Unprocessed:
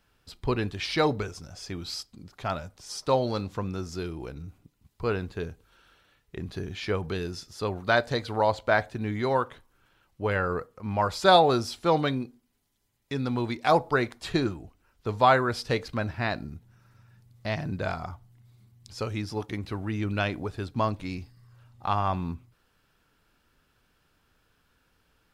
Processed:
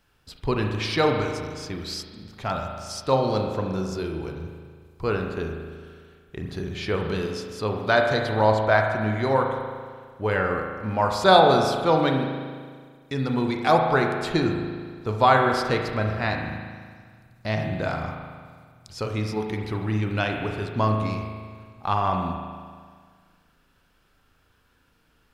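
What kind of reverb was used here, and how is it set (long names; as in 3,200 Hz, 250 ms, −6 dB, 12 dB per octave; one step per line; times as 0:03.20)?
spring reverb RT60 1.8 s, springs 37 ms, chirp 40 ms, DRR 2.5 dB
level +2 dB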